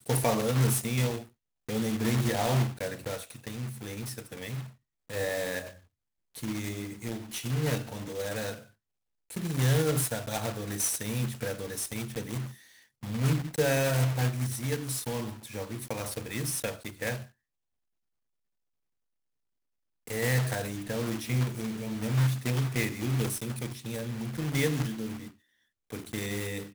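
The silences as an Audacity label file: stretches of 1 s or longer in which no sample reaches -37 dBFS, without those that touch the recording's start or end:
17.230000	20.080000	silence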